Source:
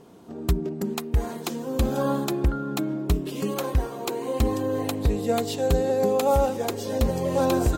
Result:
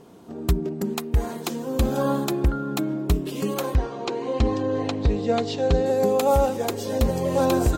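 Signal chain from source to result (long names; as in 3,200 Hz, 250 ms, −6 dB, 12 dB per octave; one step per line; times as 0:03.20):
0:03.75–0:05.86: low-pass filter 5,800 Hz 24 dB per octave
level +1.5 dB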